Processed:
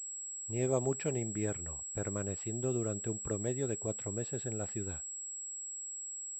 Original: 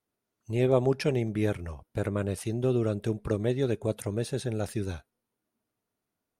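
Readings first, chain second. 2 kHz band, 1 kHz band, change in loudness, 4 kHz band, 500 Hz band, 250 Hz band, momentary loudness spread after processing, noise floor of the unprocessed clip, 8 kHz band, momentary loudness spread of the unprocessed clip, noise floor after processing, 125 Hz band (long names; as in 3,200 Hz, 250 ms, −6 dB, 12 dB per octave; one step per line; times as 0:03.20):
−8.5 dB, −8.0 dB, −6.5 dB, −13.0 dB, −8.0 dB, −8.0 dB, 7 LU, below −85 dBFS, +12.5 dB, 9 LU, −43 dBFS, −8.0 dB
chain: switching amplifier with a slow clock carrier 7,700 Hz
level −8 dB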